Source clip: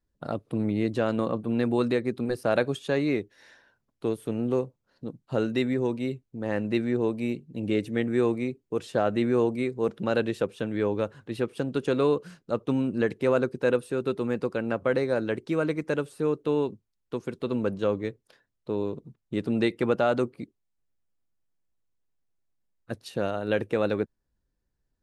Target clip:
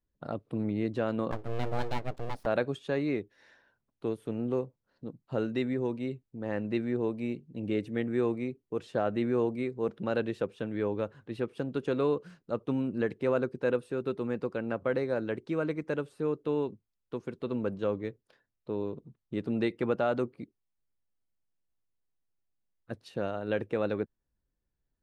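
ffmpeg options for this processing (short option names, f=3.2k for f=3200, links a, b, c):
-filter_complex "[0:a]lowpass=f=3.3k:p=1,asettb=1/sr,asplit=3[a][b][c];[a]atrim=end=1.314[d];[b]atrim=start=1.31:end=2.46,asetpts=PTS-STARTPTS,afade=t=in:d=0.004:c=qsin,afade=t=out:st=1.146:d=0.004:c=qsin,aeval=exprs='abs(val(0))':c=same[e];[c]atrim=start=2.456[f];[d][e]acrossfade=d=0.004:c1=hsin:c2=qsin[g];[g][f]acrossfade=d=0.004:c1=qsin:c2=hsin,volume=-4.5dB"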